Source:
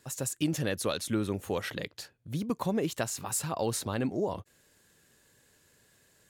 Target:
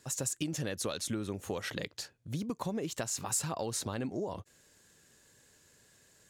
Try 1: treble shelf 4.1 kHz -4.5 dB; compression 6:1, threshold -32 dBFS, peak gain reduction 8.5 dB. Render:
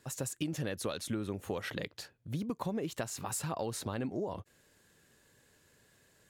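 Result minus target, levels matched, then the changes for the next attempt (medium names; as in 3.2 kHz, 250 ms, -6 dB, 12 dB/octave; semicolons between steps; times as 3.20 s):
8 kHz band -4.5 dB
add after compression: peaking EQ 6.6 kHz +7.5 dB 1.2 oct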